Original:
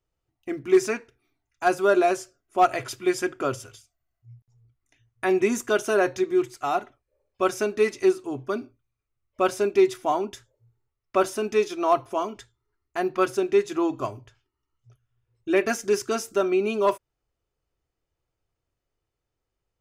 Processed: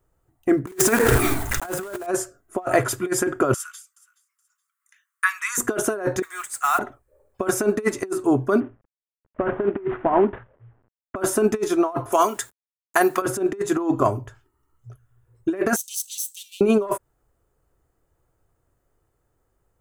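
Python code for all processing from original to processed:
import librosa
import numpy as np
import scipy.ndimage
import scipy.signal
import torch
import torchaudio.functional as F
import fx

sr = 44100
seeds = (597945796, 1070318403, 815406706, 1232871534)

y = fx.chain(x, sr, fx.block_float(bits=3),
    fx.peak_eq(hz=3000.0, db=3.0, octaves=1.7),
    fx.pre_swell(db_per_s=21.0), at=(0.67, 2.08))
y = fx.chain(y, sr, fx.steep_highpass(hz=1100.0, slope=72),
    fx.echo_feedback(ms=423, feedback_pct=24, wet_db=-24.0), at=(3.54, 5.58))
y = fx.chain(y, sr, fx.highpass(hz=1200.0, slope=24),
    fx.peak_eq(hz=8500.0, db=9.0, octaves=0.47),
    fx.mod_noise(seeds[0], snr_db=18), at=(6.22, 6.79))
y = fx.chain(y, sr, fx.cvsd(bps=16000),
    fx.air_absorb(metres=250.0), at=(8.6, 11.16))
y = fx.chain(y, sr, fx.tilt_eq(slope=4.0),
    fx.quant_dither(seeds[1], bits=10, dither='none'),
    fx.band_squash(depth_pct=40), at=(12.12, 13.22))
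y = fx.chain(y, sr, fx.lower_of_two(delay_ms=0.5),
    fx.steep_highpass(hz=2900.0, slope=72), at=(15.76, 16.61))
y = fx.band_shelf(y, sr, hz=3600.0, db=-11.0, octaves=1.7)
y = fx.over_compress(y, sr, threshold_db=-27.0, ratio=-0.5)
y = F.gain(torch.from_numpy(y), 7.5).numpy()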